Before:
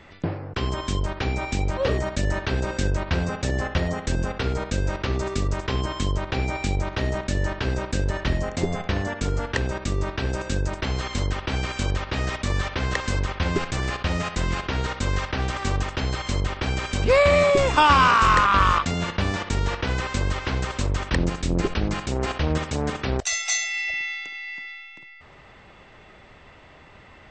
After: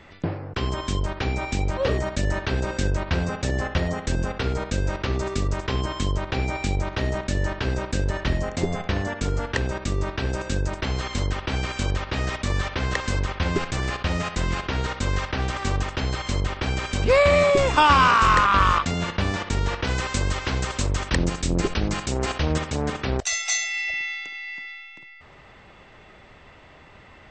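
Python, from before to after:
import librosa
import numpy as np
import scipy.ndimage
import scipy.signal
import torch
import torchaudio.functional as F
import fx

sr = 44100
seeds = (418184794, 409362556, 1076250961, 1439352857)

y = fx.high_shelf(x, sr, hz=6600.0, db=11.0, at=(19.84, 22.59))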